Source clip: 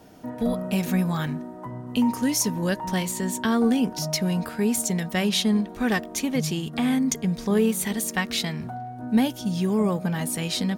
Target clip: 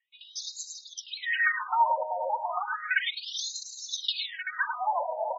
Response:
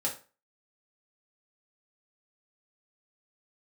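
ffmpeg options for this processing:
-filter_complex "[0:a]agate=range=-33dB:threshold=-25dB:ratio=3:detection=peak,asplit=2[a][b];[b]aecho=0:1:75|209|222|610|766:0.168|0.376|0.251|0.168|0.224[c];[a][c]amix=inputs=2:normalize=0,acompressor=threshold=-23dB:ratio=6,bass=f=250:g=-4,treble=f=4k:g=-7,aecho=1:1:6.3:0.99,asetrate=88200,aresample=44100,superequalizer=11b=1.58:14b=0.447,acrossover=split=480|4600[d][e][f];[d]alimiter=level_in=9dB:limit=-24dB:level=0:latency=1:release=61,volume=-9dB[g];[g][e][f]amix=inputs=3:normalize=0,aexciter=amount=1.3:drive=2.1:freq=5.1k,afftfilt=real='re*between(b*sr/1024,670*pow(5400/670,0.5+0.5*sin(2*PI*0.33*pts/sr))/1.41,670*pow(5400/670,0.5+0.5*sin(2*PI*0.33*pts/sr))*1.41)':imag='im*between(b*sr/1024,670*pow(5400/670,0.5+0.5*sin(2*PI*0.33*pts/sr))/1.41,670*pow(5400/670,0.5+0.5*sin(2*PI*0.33*pts/sr))*1.41)':win_size=1024:overlap=0.75,volume=6.5dB"

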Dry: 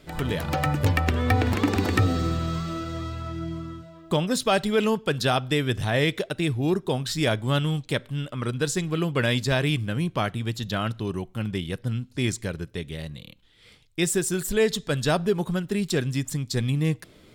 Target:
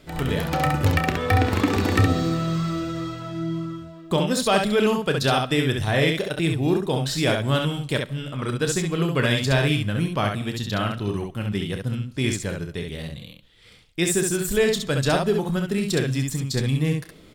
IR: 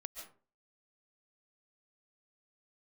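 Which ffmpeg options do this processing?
-filter_complex "[0:a]aecho=1:1:30|67:0.316|0.596,asplit=2[a][b];[1:a]atrim=start_sample=2205[c];[b][c]afir=irnorm=-1:irlink=0,volume=-12.5dB[d];[a][d]amix=inputs=2:normalize=0"

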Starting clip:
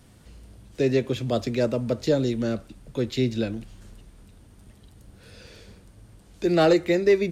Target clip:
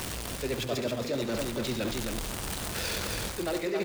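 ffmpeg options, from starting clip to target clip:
-af "aeval=exprs='val(0)+0.5*0.0282*sgn(val(0))':c=same,lowshelf=f=380:g=-10,areverse,acompressor=threshold=-35dB:ratio=8,areverse,aecho=1:1:132|203|253|524|651:0.335|0.126|0.112|0.631|0.1,atempo=1.9,volume=6.5dB"

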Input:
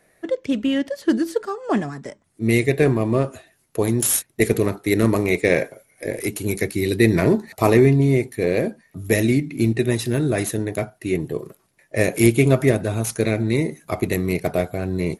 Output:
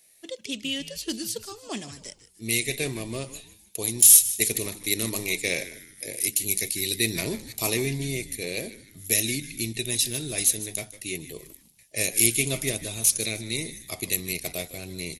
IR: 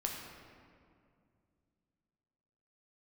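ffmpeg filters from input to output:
-filter_complex "[0:a]aexciter=amount=8:drive=7.1:freq=2.4k,asplit=2[a][b];[b]asplit=3[c][d][e];[c]adelay=153,afreqshift=-110,volume=-15dB[f];[d]adelay=306,afreqshift=-220,volume=-23.6dB[g];[e]adelay=459,afreqshift=-330,volume=-32.3dB[h];[f][g][h]amix=inputs=3:normalize=0[i];[a][i]amix=inputs=2:normalize=0,volume=-14.5dB"

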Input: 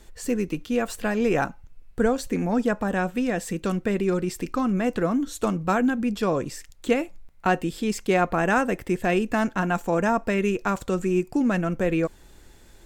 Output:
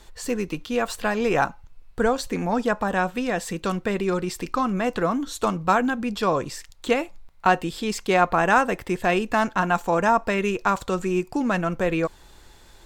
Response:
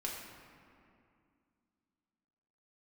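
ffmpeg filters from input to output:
-af "equalizer=f=250:t=o:w=1:g=-3,equalizer=f=1k:t=o:w=1:g=7,equalizer=f=4k:t=o:w=1:g=6"

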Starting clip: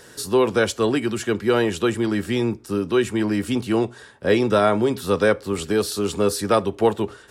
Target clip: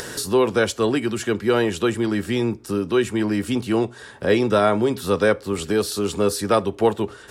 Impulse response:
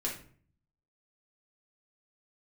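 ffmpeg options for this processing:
-af "acompressor=mode=upward:threshold=-22dB:ratio=2.5"

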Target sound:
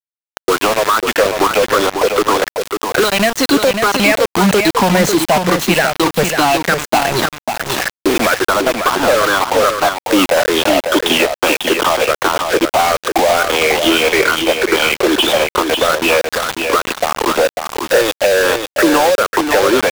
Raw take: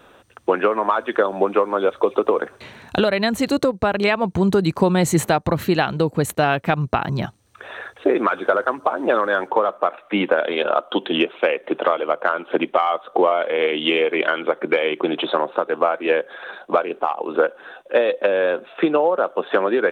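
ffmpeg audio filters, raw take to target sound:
-filter_complex "[0:a]afftfilt=real='re*pow(10,15/40*sin(2*PI*(0.54*log(max(b,1)*sr/1024/100)/log(2)-(-2.4)*(pts-256)/sr)))':imag='im*pow(10,15/40*sin(2*PI*(0.54*log(max(b,1)*sr/1024/100)/log(2)-(-2.4)*(pts-256)/sr)))':win_size=1024:overlap=0.75,highpass=200,equalizer=f=8.2k:t=o:w=1.7:g=2.5,acrossover=split=270[a][b];[b]acompressor=threshold=-21dB:ratio=4[c];[a][c]amix=inputs=2:normalize=0,asplit=2[d][e];[e]highpass=f=720:p=1,volume=12dB,asoftclip=type=tanh:threshold=-7dB[f];[d][f]amix=inputs=2:normalize=0,lowpass=f=5.4k:p=1,volume=-6dB,acrusher=bits=3:mix=0:aa=0.000001,aeval=exprs='0.447*sin(PI/2*1.58*val(0)/0.447)':c=same,aecho=1:1:546:0.501,adynamicequalizer=threshold=0.0447:dfrequency=6200:dqfactor=0.7:tfrequency=6200:tqfactor=0.7:attack=5:release=100:ratio=0.375:range=2:mode=cutabove:tftype=highshelf"

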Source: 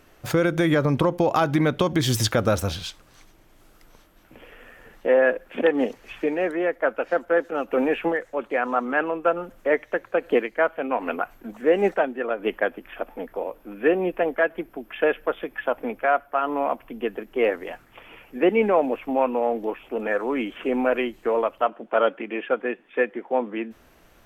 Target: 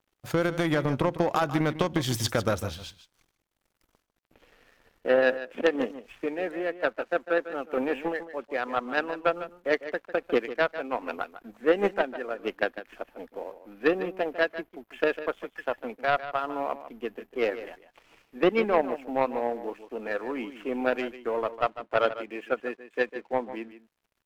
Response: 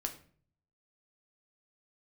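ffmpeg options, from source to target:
-af "aeval=exprs='sgn(val(0))*max(abs(val(0))-0.00335,0)':c=same,aeval=exprs='0.422*(cos(1*acos(clip(val(0)/0.422,-1,1)))-cos(1*PI/2))+0.0841*(cos(3*acos(clip(val(0)/0.422,-1,1)))-cos(3*PI/2))':c=same,aecho=1:1:150:0.224"

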